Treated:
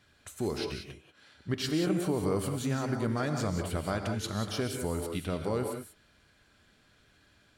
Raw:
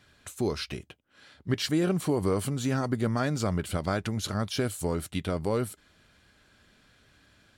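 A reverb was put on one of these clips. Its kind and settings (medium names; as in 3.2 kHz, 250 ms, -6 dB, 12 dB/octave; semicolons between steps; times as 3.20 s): gated-style reverb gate 210 ms rising, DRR 4 dB; trim -4 dB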